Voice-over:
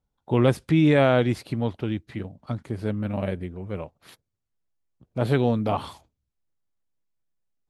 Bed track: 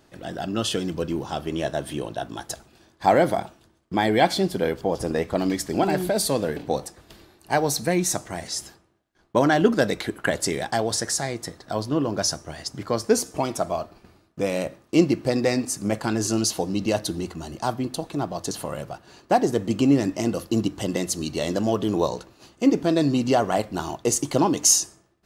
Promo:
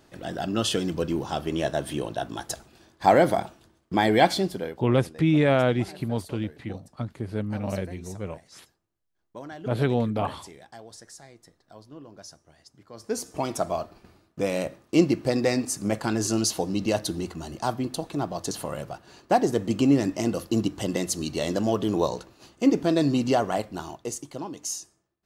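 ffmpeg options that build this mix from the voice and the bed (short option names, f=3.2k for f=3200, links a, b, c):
-filter_complex "[0:a]adelay=4500,volume=-2dB[a];[1:a]volume=19.5dB,afade=t=out:st=4.24:d=0.59:silence=0.0891251,afade=t=in:st=12.93:d=0.62:silence=0.105925,afade=t=out:st=23.22:d=1.07:silence=0.211349[b];[a][b]amix=inputs=2:normalize=0"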